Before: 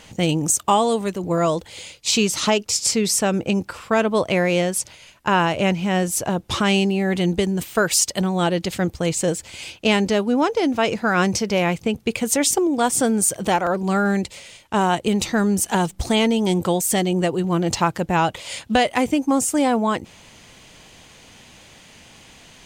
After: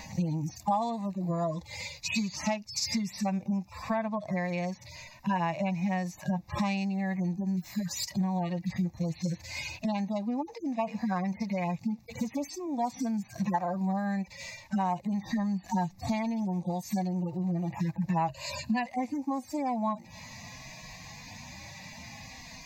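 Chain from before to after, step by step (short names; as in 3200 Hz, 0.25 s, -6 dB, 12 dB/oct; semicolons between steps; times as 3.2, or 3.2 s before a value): median-filter separation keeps harmonic; 18.28–18.86 ripple EQ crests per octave 1.4, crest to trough 12 dB; compressor 6:1, threshold -32 dBFS, peak gain reduction 17 dB; fixed phaser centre 2100 Hz, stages 8; gain +7.5 dB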